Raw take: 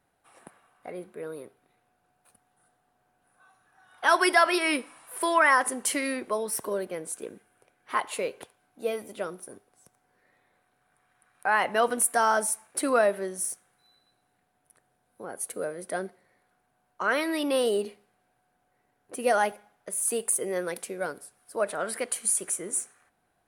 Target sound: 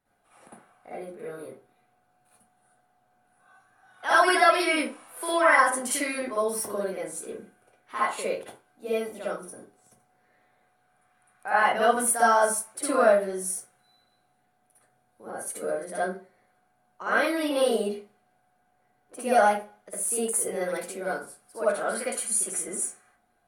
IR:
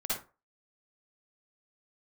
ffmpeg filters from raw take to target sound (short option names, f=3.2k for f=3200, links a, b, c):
-filter_complex "[1:a]atrim=start_sample=2205[a];[0:a][a]afir=irnorm=-1:irlink=0,volume=-3.5dB"